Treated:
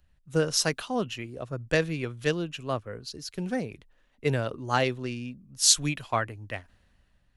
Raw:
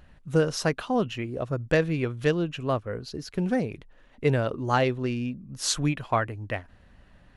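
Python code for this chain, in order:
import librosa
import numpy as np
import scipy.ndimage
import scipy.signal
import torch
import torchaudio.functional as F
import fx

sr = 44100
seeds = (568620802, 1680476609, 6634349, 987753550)

y = fx.high_shelf(x, sr, hz=2900.0, db=11.0)
y = fx.band_widen(y, sr, depth_pct=40)
y = y * 10.0 ** (-4.5 / 20.0)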